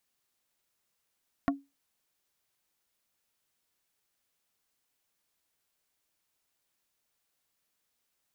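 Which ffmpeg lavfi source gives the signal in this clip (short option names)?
-f lavfi -i "aevalsrc='0.0891*pow(10,-3*t/0.23)*sin(2*PI*278*t)+0.0668*pow(10,-3*t/0.077)*sin(2*PI*695*t)+0.0501*pow(10,-3*t/0.044)*sin(2*PI*1112*t)+0.0376*pow(10,-3*t/0.033)*sin(2*PI*1390*t)+0.0282*pow(10,-3*t/0.024)*sin(2*PI*1807*t)':d=0.45:s=44100"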